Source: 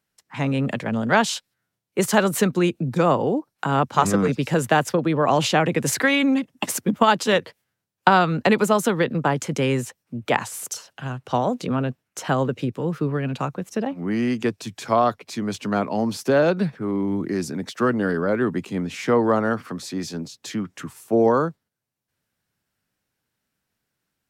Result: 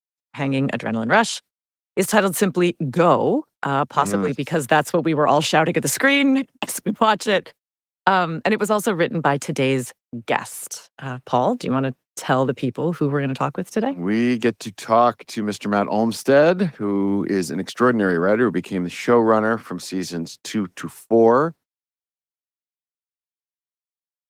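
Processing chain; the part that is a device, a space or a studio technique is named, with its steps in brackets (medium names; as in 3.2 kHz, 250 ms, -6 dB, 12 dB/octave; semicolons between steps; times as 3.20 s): video call (high-pass 170 Hz 6 dB/octave; level rider gain up to 7 dB; gate -38 dBFS, range -45 dB; trim -1 dB; Opus 24 kbps 48 kHz)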